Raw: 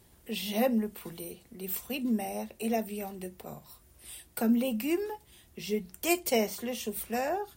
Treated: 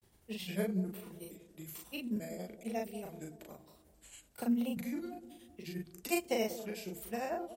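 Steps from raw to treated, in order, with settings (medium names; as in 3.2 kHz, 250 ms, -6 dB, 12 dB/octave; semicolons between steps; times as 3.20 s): pitch shift switched off and on -3 st, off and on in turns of 435 ms; granulator 100 ms, grains 11 per s, spray 24 ms, pitch spread up and down by 0 st; doubling 38 ms -2.5 dB; feedback echo behind a band-pass 189 ms, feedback 50%, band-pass 400 Hz, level -12 dB; trim -5 dB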